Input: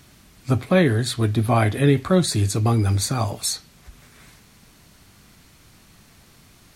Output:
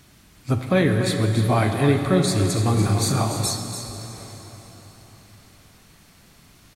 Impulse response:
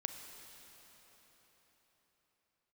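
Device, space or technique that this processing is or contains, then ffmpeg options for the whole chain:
cave: -filter_complex "[0:a]aecho=1:1:289:0.335[s0];[1:a]atrim=start_sample=2205[s1];[s0][s1]afir=irnorm=-1:irlink=0,asettb=1/sr,asplit=3[s2][s3][s4];[s2]atrim=end=2.734[s5];[s3]atrim=start=2.73:end=3.47,asetpts=PTS-STARTPTS,afade=t=in:d=0.004:c=qsin,afade=t=out:st=0.736:d=0.004:c=qsin,asplit=2[s6][s7];[s7]adelay=37,volume=0.708[s8];[s6][s8]amix=inputs=2:normalize=0,atrim=end_sample=32634[s9];[s4]atrim=start=3.466[s10];[s5][s9]acrossfade=d=0.004:c1=hsin:c2=qsin[s11];[s11][s10]acrossfade=d=0.004:c1=qsin:c2=hsin"

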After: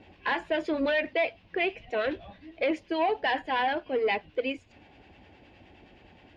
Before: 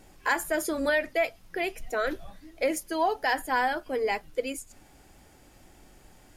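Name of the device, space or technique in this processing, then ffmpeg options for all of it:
guitar amplifier with harmonic tremolo: -filter_complex "[0:a]acrossover=split=870[s0][s1];[s0]aeval=exprs='val(0)*(1-0.5/2+0.5/2*cos(2*PI*9.6*n/s))':c=same[s2];[s1]aeval=exprs='val(0)*(1-0.5/2-0.5/2*cos(2*PI*9.6*n/s))':c=same[s3];[s2][s3]amix=inputs=2:normalize=0,asoftclip=type=tanh:threshold=0.0531,highpass=75,equalizer=f=88:t=q:w=4:g=5,equalizer=f=140:t=q:w=4:g=-6,equalizer=f=1300:t=q:w=4:g=-9,equalizer=f=2700:t=q:w=4:g=6,lowpass=f=3600:w=0.5412,lowpass=f=3600:w=1.3066,volume=1.88"

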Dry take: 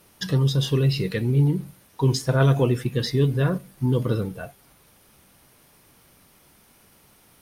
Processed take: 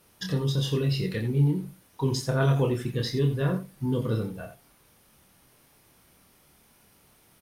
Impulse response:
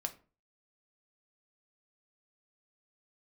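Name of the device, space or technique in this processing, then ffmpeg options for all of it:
slapback doubling: -filter_complex "[0:a]asplit=3[s0][s1][s2];[s1]adelay=27,volume=0.562[s3];[s2]adelay=86,volume=0.282[s4];[s0][s3][s4]amix=inputs=3:normalize=0,volume=0.531"

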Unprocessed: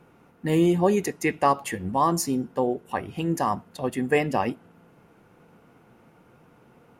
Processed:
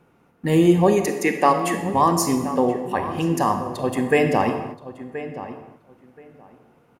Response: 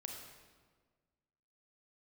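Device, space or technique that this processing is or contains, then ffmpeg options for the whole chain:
keyed gated reverb: -filter_complex "[0:a]asplit=3[s0][s1][s2];[1:a]atrim=start_sample=2205[s3];[s1][s3]afir=irnorm=-1:irlink=0[s4];[s2]apad=whole_len=308353[s5];[s4][s5]sidechaingate=range=0.0224:threshold=0.00316:ratio=16:detection=peak,volume=2.11[s6];[s0][s6]amix=inputs=2:normalize=0,asettb=1/sr,asplit=3[s7][s8][s9];[s7]atrim=end=1.074[s10];[s8]atrim=start=1.07:end=1.94,asetpts=PTS-STARTPTS,afade=t=in:d=0.004:c=qsin,afade=t=out:st=0.866:d=0.004:c=qsin,highpass=f=180:w=0.5412,highpass=f=180:w=1.3066[s11];[s9]atrim=start=1.936[s12];[s10][s11]acrossfade=d=0.004:c1=hsin:c2=qsin[s13];[s13][s12]acrossfade=d=0.004:c1=qsin:c2=hsin,asplit=2[s14][s15];[s15]adelay=1026,lowpass=f=2100:p=1,volume=0.224,asplit=2[s16][s17];[s17]adelay=1026,lowpass=f=2100:p=1,volume=0.18[s18];[s14][s16][s18]amix=inputs=3:normalize=0,volume=0.708"

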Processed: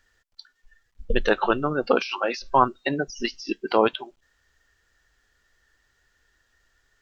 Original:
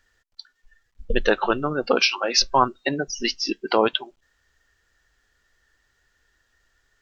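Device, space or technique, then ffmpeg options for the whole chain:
de-esser from a sidechain: -filter_complex "[0:a]asplit=2[s0][s1];[s1]highpass=f=4800:w=0.5412,highpass=f=4800:w=1.3066,apad=whole_len=309337[s2];[s0][s2]sidechaincompress=threshold=0.0141:ratio=6:attack=1:release=44"

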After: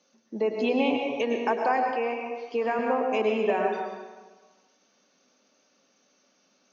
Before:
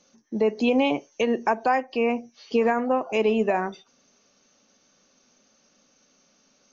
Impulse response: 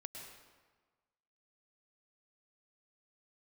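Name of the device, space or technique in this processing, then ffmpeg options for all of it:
supermarket ceiling speaker: -filter_complex "[0:a]highpass=220,lowpass=5800[s0];[1:a]atrim=start_sample=2205[s1];[s0][s1]afir=irnorm=-1:irlink=0,asettb=1/sr,asplit=3[s2][s3][s4];[s2]atrim=end=1.914[s5];[s3]atrim=start=1.91:end=2.79,asetpts=PTS-STARTPTS,afade=t=in:d=0.004:c=qsin,afade=t=out:st=0.876:d=0.004:c=qsin,equalizer=f=125:t=o:w=1:g=-9,equalizer=f=250:t=o:w=1:g=-4,equalizer=f=4000:t=o:w=1:g=-6[s6];[s4]atrim=start=2.786[s7];[s5][s6]acrossfade=d=0.004:c1=hsin:c2=qsin[s8];[s8][s7]acrossfade=d=0.004:c1=qsin:c2=hsin,volume=1.26"

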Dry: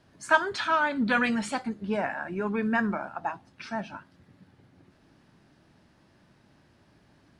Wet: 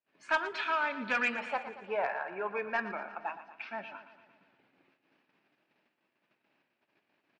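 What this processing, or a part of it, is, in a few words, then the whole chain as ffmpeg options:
intercom: -filter_complex "[0:a]agate=range=0.0501:threshold=0.00112:ratio=16:detection=peak,asettb=1/sr,asplit=3[s0][s1][s2];[s0]atrim=end=1.354[s3];[s1]atrim=start=1.35:end=2.76,asetpts=PTS-STARTPTS,afade=t=in:d=0.004:c=qsin,afade=t=out:st=1.406:d=0.004:c=qsin,equalizer=f=125:t=o:w=1:g=6,equalizer=f=250:t=o:w=1:g=-11,equalizer=f=500:t=o:w=1:g=7,equalizer=f=1000:t=o:w=1:g=5,equalizer=f=4000:t=o:w=1:g=-6,equalizer=f=8000:t=o:w=1:g=-6[s4];[s2]atrim=start=2.756[s5];[s3][s4]acrossfade=d=0.004:c1=hsin:c2=qsin[s6];[s6][s5]acrossfade=d=0.004:c1=qsin:c2=hsin,asettb=1/sr,asplit=3[s7][s8][s9];[s7]atrim=end=3.484[s10];[s8]atrim=start=3.48:end=3.88,asetpts=PTS-STARTPTS,afade=t=in:d=0.004:c=qsin,afade=t=out:st=0.396:d=0.004:c=qsin,lowpass=4400[s11];[s9]atrim=start=3.876[s12];[s10][s11]acrossfade=d=0.004:c1=hsin:c2=qsin[s13];[s13][s12]acrossfade=d=0.004:c1=qsin:c2=hsin,highpass=360,lowpass=3600,equalizer=f=2500:t=o:w=0.49:g=10.5,asoftclip=type=tanh:threshold=0.211,aecho=1:1:116|232|348|464|580|696|812:0.224|0.134|0.0806|0.0484|0.029|0.0174|0.0104,volume=0.501"

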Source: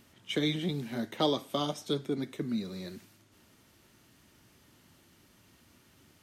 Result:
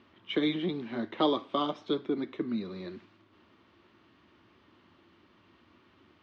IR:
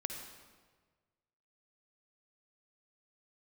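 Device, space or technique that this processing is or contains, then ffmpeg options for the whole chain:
guitar cabinet: -af "highpass=79,equalizer=f=140:t=q:w=4:g=-10,equalizer=f=340:t=q:w=4:g=6,equalizer=f=1100:t=q:w=4:g=8,lowpass=f=3700:w=0.5412,lowpass=f=3700:w=1.3066"

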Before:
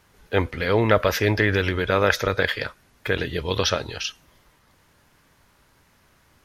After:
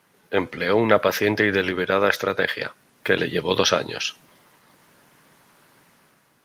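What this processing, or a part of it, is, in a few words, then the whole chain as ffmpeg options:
video call: -af "highpass=f=140:w=0.5412,highpass=f=140:w=1.3066,dynaudnorm=f=150:g=7:m=2.11" -ar 48000 -c:a libopus -b:a 32k

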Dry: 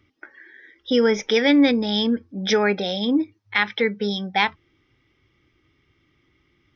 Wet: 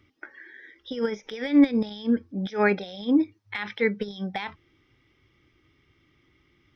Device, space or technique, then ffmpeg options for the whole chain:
de-esser from a sidechain: -filter_complex "[0:a]asplit=2[s0][s1];[s1]highpass=f=5300:w=0.5412,highpass=f=5300:w=1.3066,apad=whole_len=297929[s2];[s0][s2]sidechaincompress=threshold=0.00282:ratio=10:attack=1.7:release=51"

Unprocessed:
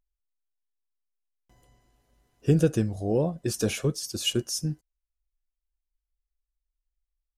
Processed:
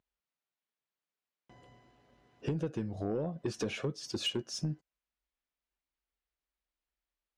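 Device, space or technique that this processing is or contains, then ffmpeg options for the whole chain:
AM radio: -af "highpass=120,lowpass=3500,acompressor=threshold=0.0178:ratio=8,asoftclip=type=tanh:threshold=0.0282,volume=2"

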